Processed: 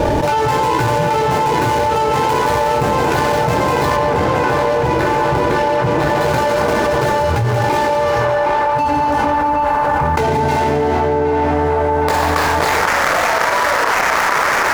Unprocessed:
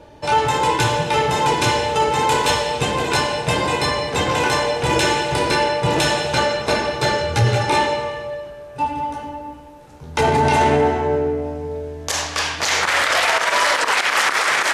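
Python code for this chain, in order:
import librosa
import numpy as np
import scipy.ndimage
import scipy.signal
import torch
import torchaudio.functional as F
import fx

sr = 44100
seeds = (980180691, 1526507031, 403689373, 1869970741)

y = scipy.ndimage.median_filter(x, 15, mode='constant')
y = fx.high_shelf(y, sr, hz=4900.0, db=-9.0, at=(3.96, 6.21))
y = fx.echo_banded(y, sr, ms=765, feedback_pct=73, hz=1100.0, wet_db=-8)
y = fx.env_flatten(y, sr, amount_pct=100)
y = y * 10.0 ** (-2.5 / 20.0)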